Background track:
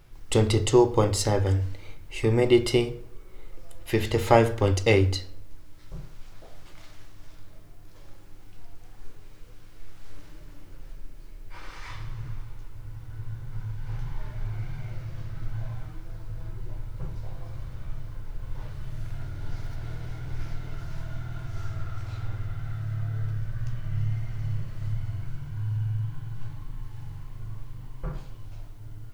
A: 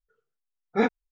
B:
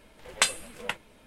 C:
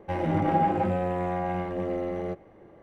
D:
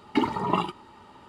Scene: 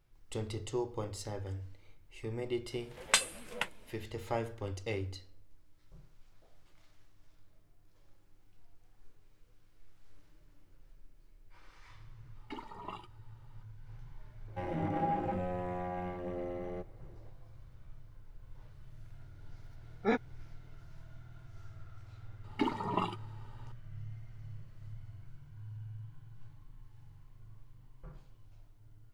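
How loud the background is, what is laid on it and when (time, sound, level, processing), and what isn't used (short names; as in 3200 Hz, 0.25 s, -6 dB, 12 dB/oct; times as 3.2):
background track -17 dB
2.72 add B -3.5 dB + HPF 42 Hz
12.35 add D -18 dB + low shelf 300 Hz -9.5 dB
14.48 add C -9.5 dB
19.29 add A -7.5 dB
22.44 add D -8.5 dB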